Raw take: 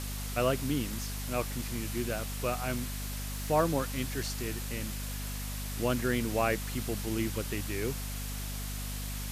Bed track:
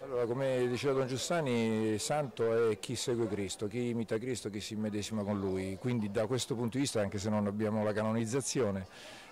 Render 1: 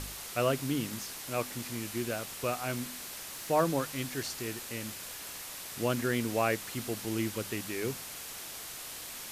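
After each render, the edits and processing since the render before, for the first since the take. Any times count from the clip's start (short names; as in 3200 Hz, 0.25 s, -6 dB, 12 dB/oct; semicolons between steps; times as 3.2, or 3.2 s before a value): de-hum 50 Hz, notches 5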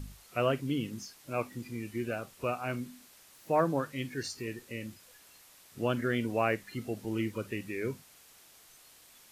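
noise print and reduce 15 dB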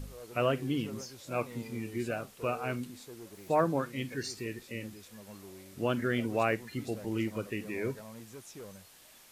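add bed track -15.5 dB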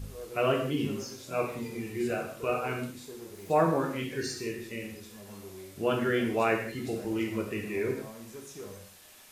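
non-linear reverb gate 0.22 s falling, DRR 0 dB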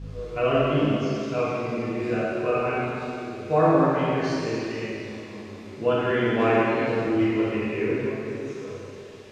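air absorption 150 m; plate-style reverb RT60 2.7 s, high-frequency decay 1×, DRR -6.5 dB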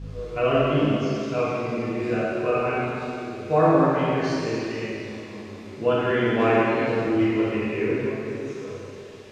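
gain +1 dB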